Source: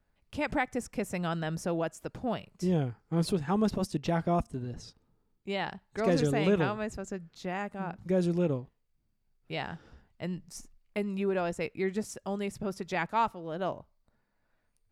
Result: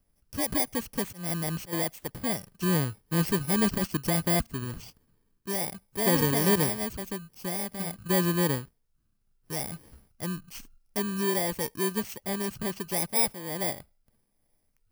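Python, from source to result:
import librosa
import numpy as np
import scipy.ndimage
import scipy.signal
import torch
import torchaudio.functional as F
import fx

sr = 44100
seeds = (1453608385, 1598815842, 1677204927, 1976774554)

y = fx.bit_reversed(x, sr, seeds[0], block=32)
y = fx.auto_swell(y, sr, attack_ms=199.0, at=(1.05, 1.73))
y = F.gain(torch.from_numpy(y), 2.5).numpy()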